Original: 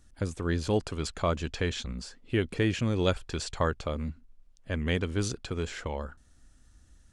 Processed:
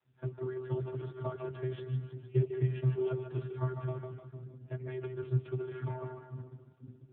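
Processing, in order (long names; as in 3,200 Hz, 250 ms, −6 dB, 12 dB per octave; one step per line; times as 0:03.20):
0:01.31–0:02.19: noise gate −42 dBFS, range −30 dB
brickwall limiter −21.5 dBFS, peak gain reduction 9.5 dB
channel vocoder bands 32, square 128 Hz
echo with a time of its own for lows and highs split 300 Hz, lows 495 ms, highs 152 ms, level −6 dB
level +1.5 dB
AMR narrowband 5.9 kbit/s 8,000 Hz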